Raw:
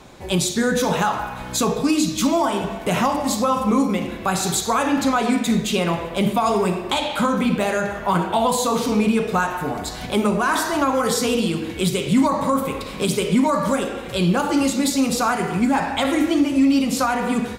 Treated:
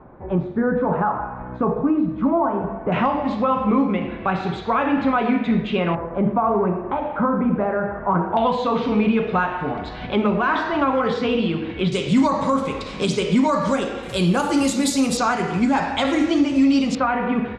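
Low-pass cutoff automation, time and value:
low-pass 24 dB/octave
1.4 kHz
from 2.92 s 2.8 kHz
from 5.95 s 1.5 kHz
from 8.37 s 3.3 kHz
from 11.92 s 6.8 kHz
from 14.03 s 11 kHz
from 15.17 s 6.7 kHz
from 16.95 s 2.7 kHz

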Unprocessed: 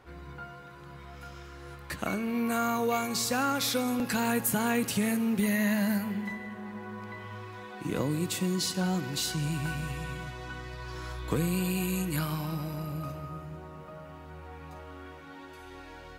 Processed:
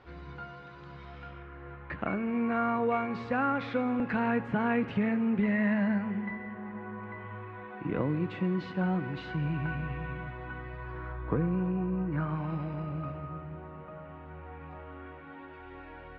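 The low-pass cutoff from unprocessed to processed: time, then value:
low-pass 24 dB/octave
1.06 s 4.7 kHz
1.46 s 2.3 kHz
10.75 s 2.3 kHz
11.93 s 1.3 kHz
12.58 s 2.6 kHz

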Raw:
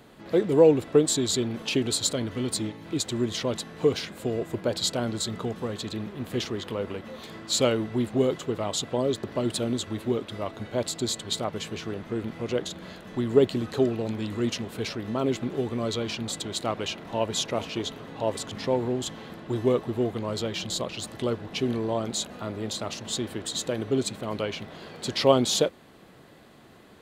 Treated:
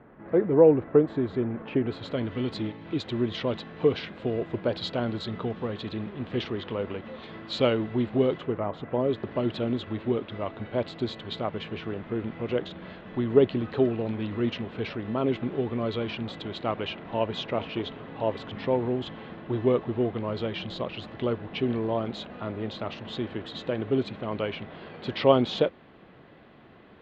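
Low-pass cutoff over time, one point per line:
low-pass 24 dB/octave
1.76 s 1.9 kHz
2.32 s 3.5 kHz
8.35 s 3.5 kHz
8.68 s 1.8 kHz
9.24 s 3.2 kHz

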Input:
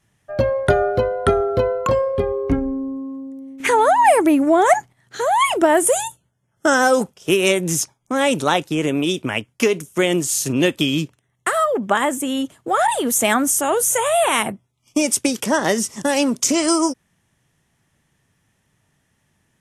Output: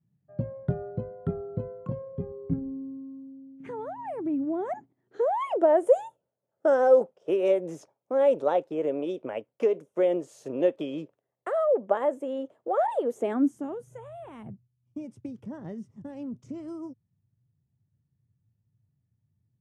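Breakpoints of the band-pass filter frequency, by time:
band-pass filter, Q 3.3
4.40 s 160 Hz
5.38 s 540 Hz
13.04 s 540 Hz
14.12 s 110 Hz

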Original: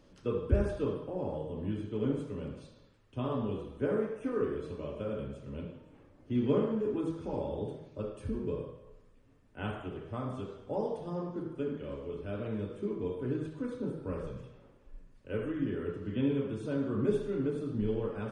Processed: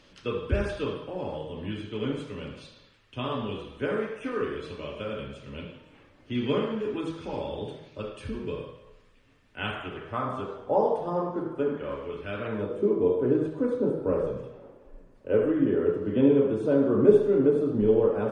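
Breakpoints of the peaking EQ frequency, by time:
peaking EQ +14 dB 2.6 oct
9.66 s 2.9 kHz
10.62 s 860 Hz
11.68 s 860 Hz
12.33 s 2.4 kHz
12.78 s 540 Hz

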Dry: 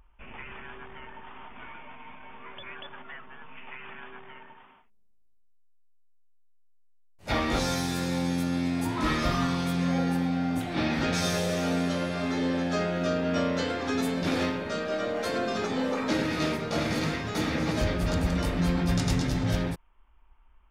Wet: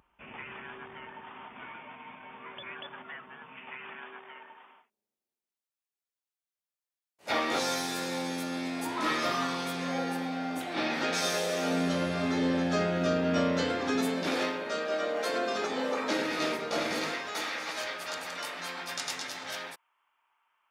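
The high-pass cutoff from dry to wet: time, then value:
3.61 s 130 Hz
4.21 s 360 Hz
11.54 s 360 Hz
12.05 s 97 Hz
13.67 s 97 Hz
14.37 s 360 Hz
16.95 s 360 Hz
17.58 s 930 Hz

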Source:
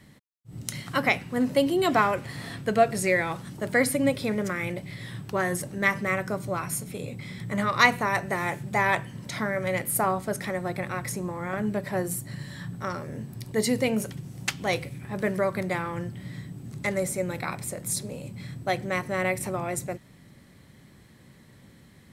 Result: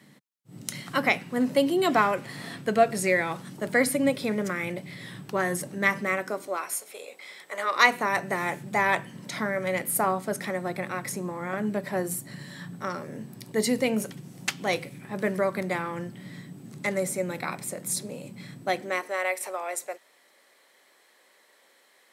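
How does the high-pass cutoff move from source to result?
high-pass 24 dB/octave
5.90 s 150 Hz
6.83 s 490 Hz
7.52 s 490 Hz
8.19 s 160 Hz
18.64 s 160 Hz
19.20 s 480 Hz

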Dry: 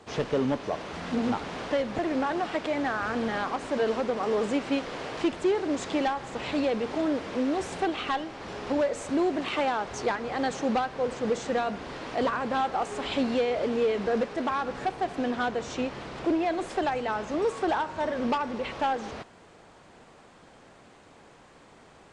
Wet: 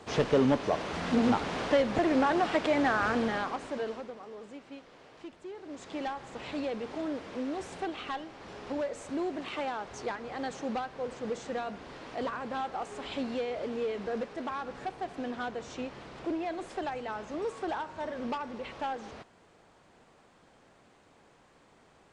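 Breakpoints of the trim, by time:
3.06 s +2 dB
3.84 s -8.5 dB
4.30 s -19 dB
5.48 s -19 dB
6.10 s -7.5 dB

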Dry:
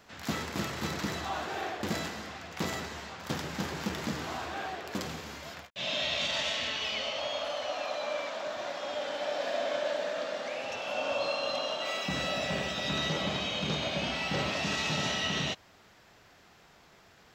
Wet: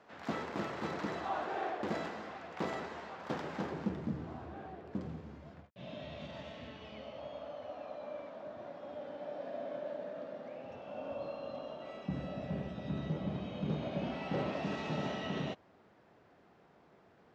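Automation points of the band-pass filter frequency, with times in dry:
band-pass filter, Q 0.6
3.56 s 580 Hz
4.08 s 130 Hz
13.24 s 130 Hz
14.33 s 330 Hz

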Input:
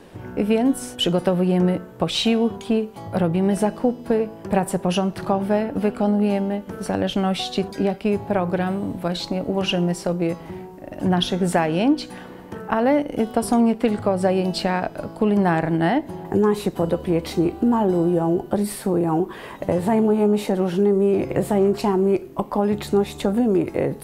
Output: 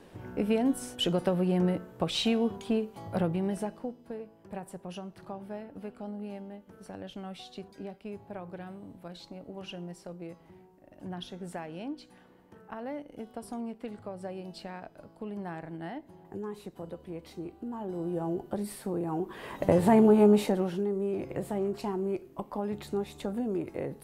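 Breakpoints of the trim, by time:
3.22 s -8 dB
4.08 s -20 dB
17.72 s -20 dB
18.21 s -12 dB
19.16 s -12 dB
19.64 s -2 dB
20.33 s -2 dB
20.85 s -13 dB

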